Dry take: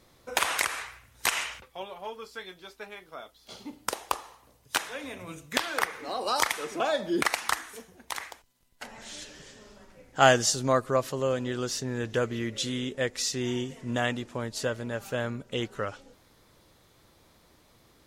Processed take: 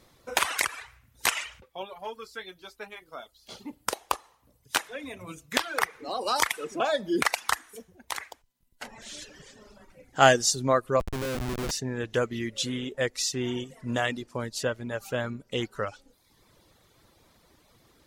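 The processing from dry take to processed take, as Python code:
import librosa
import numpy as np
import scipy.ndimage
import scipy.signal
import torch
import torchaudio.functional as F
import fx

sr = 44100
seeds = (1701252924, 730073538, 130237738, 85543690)

y = fx.dereverb_blind(x, sr, rt60_s=0.83)
y = fx.schmitt(y, sr, flips_db=-31.5, at=(11.0, 11.71))
y = y * 10.0 ** (1.5 / 20.0)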